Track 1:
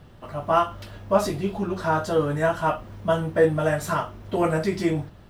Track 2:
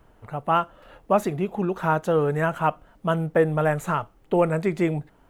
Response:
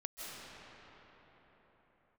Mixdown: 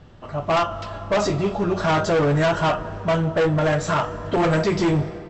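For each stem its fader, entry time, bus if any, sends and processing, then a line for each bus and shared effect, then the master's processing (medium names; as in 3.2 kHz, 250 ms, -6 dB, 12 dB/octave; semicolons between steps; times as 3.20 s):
+0.5 dB, 0.00 s, send -14.5 dB, none
-6.5 dB, 9.5 ms, no send, none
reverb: on, pre-delay 120 ms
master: level rider gain up to 6.5 dB; hard clipper -16 dBFS, distortion -7 dB; brick-wall FIR low-pass 8 kHz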